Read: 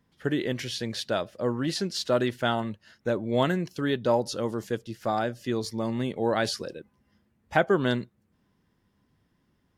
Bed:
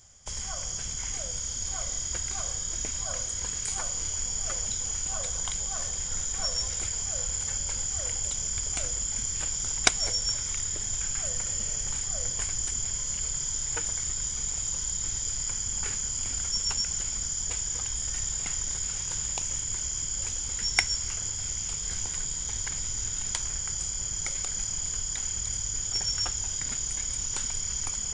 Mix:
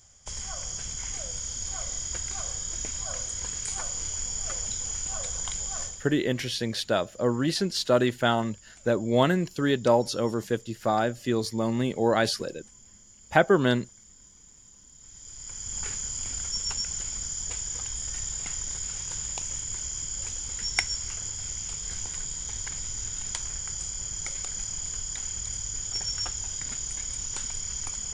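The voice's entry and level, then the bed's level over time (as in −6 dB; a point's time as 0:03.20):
5.80 s, +2.5 dB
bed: 0:05.83 −1 dB
0:06.18 −22.5 dB
0:14.90 −22.5 dB
0:15.78 −2 dB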